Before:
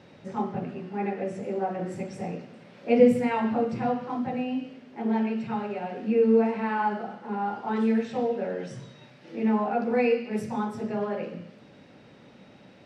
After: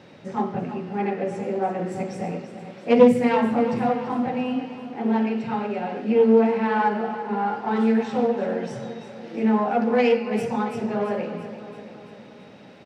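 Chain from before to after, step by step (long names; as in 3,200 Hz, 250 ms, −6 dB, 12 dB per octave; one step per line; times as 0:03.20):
phase distortion by the signal itself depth 0.17 ms
low-shelf EQ 63 Hz −10.5 dB
on a send: repeating echo 337 ms, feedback 59%, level −12 dB
on the sum: level +4.5 dB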